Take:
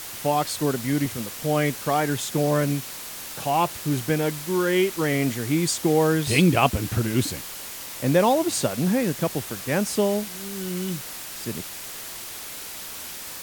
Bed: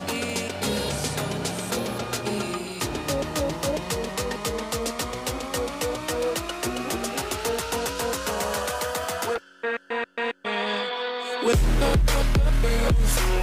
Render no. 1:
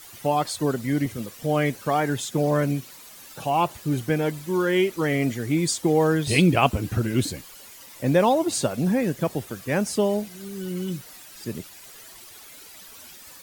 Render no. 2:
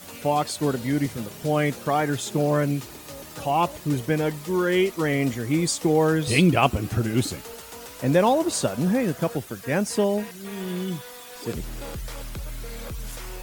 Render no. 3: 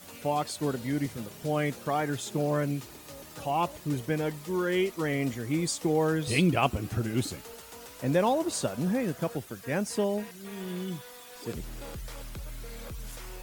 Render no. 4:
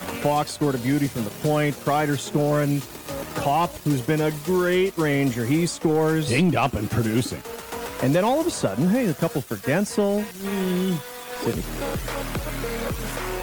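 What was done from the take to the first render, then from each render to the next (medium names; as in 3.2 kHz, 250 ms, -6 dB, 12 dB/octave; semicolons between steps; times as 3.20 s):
noise reduction 12 dB, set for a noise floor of -37 dBFS
add bed -14.5 dB
trim -6 dB
waveshaping leveller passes 2; three bands compressed up and down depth 70%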